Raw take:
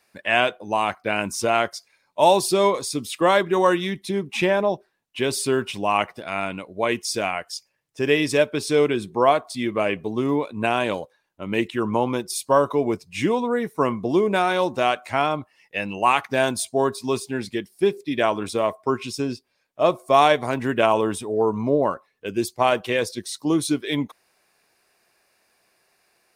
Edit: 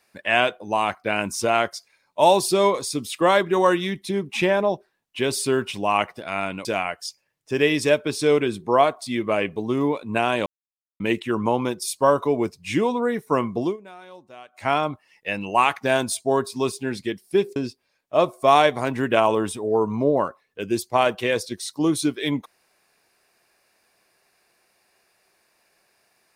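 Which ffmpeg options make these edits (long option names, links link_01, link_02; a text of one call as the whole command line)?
ffmpeg -i in.wav -filter_complex "[0:a]asplit=7[link_01][link_02][link_03][link_04][link_05][link_06][link_07];[link_01]atrim=end=6.652[link_08];[link_02]atrim=start=7.128:end=10.94,asetpts=PTS-STARTPTS,afade=type=out:start_time=3.808:duration=0.004:curve=hsin[link_09];[link_03]atrim=start=10.94:end=11.48,asetpts=PTS-STARTPTS,volume=0[link_10];[link_04]atrim=start=11.48:end=14.25,asetpts=PTS-STARTPTS,afade=type=in:duration=0.004:curve=hsin,afade=type=out:start_time=2.61:duration=0.16:silence=0.0749894[link_11];[link_05]atrim=start=14.25:end=15,asetpts=PTS-STARTPTS,volume=-22.5dB[link_12];[link_06]atrim=start=15:end=18.042,asetpts=PTS-STARTPTS,afade=type=in:duration=0.16:silence=0.0749894[link_13];[link_07]atrim=start=19.218[link_14];[link_09][link_10][link_11][link_12][link_13]concat=n=5:v=0:a=1[link_15];[link_08][link_15]acrossfade=duration=0.004:curve1=hsin:curve2=hsin[link_16];[link_16][link_14]acrossfade=duration=0.004:curve1=hsin:curve2=hsin" out.wav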